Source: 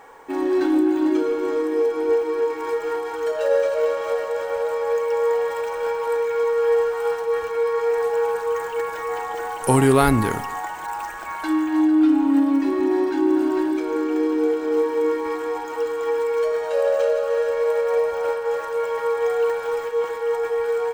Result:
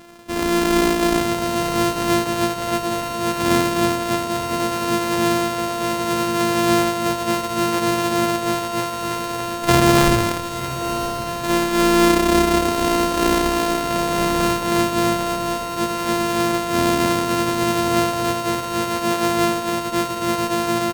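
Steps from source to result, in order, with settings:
samples sorted by size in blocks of 128 samples
feedback delay with all-pass diffusion 1,019 ms, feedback 49%, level −10.5 dB
pitch-shifted copies added −12 semitones −12 dB, −7 semitones −11 dB

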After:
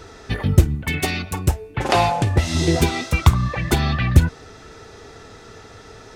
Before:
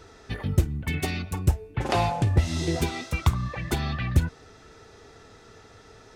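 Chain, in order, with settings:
0:00.75–0:02.55: low-shelf EQ 290 Hz −6.5 dB
level +8.5 dB

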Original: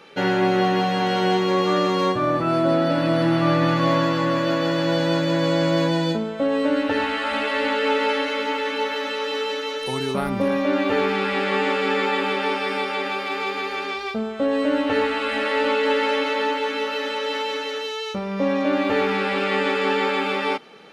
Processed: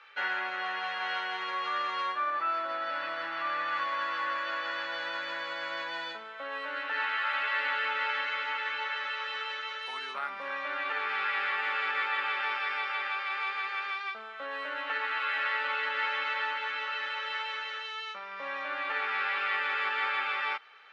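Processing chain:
brickwall limiter −12.5 dBFS, peak gain reduction 4.5 dB
four-pole ladder band-pass 1,800 Hz, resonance 30%
level +6.5 dB

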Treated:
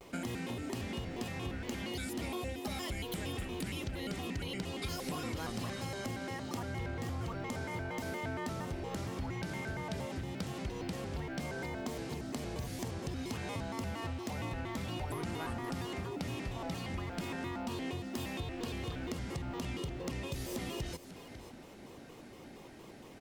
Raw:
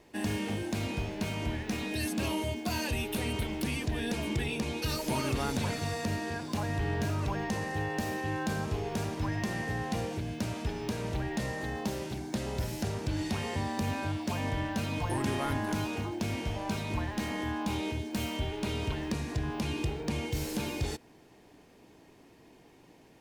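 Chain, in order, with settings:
downward compressor 4 to 1, threshold −44 dBFS, peak gain reduction 15 dB
single-tap delay 539 ms −13 dB
pitch modulation by a square or saw wave square 4.3 Hz, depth 250 cents
level +5.5 dB

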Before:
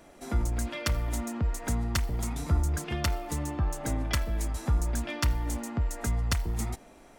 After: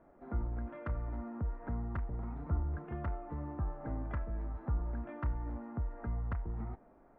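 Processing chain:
low-pass filter 1,500 Hz 24 dB per octave
level −8 dB

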